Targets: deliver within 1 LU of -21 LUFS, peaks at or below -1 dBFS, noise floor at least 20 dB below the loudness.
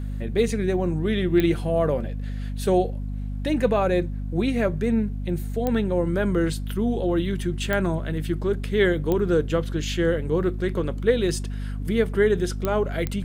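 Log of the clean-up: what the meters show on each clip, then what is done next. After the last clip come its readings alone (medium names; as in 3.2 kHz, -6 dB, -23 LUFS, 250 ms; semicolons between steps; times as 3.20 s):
clicks found 6; hum 50 Hz; highest harmonic 250 Hz; hum level -27 dBFS; loudness -24.5 LUFS; peak level -6.5 dBFS; loudness target -21.0 LUFS
-> de-click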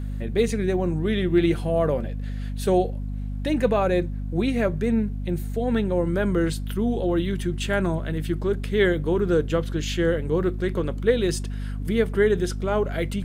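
clicks found 0; hum 50 Hz; highest harmonic 250 Hz; hum level -27 dBFS
-> hum notches 50/100/150/200/250 Hz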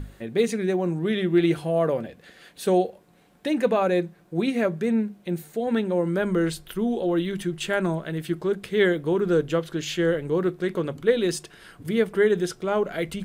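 hum not found; loudness -25.0 LUFS; peak level -8.0 dBFS; loudness target -21.0 LUFS
-> trim +4 dB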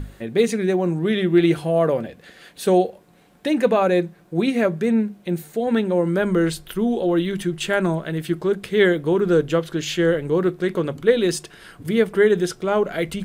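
loudness -21.0 LUFS; peak level -4.0 dBFS; noise floor -52 dBFS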